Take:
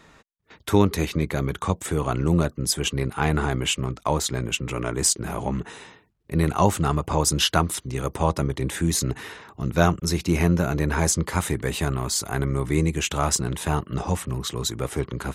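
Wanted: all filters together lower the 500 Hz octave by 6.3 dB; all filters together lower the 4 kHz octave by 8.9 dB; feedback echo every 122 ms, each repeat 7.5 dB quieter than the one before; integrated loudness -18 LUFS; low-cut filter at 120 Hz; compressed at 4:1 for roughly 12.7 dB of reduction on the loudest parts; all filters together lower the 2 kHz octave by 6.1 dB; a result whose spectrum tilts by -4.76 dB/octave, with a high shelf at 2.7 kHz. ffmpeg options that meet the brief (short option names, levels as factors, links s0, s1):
-af "highpass=120,equalizer=f=500:t=o:g=-8,equalizer=f=2000:t=o:g=-4.5,highshelf=f=2700:g=-4,equalizer=f=4000:t=o:g=-7,acompressor=threshold=0.0224:ratio=4,aecho=1:1:122|244|366|488|610:0.422|0.177|0.0744|0.0312|0.0131,volume=7.94"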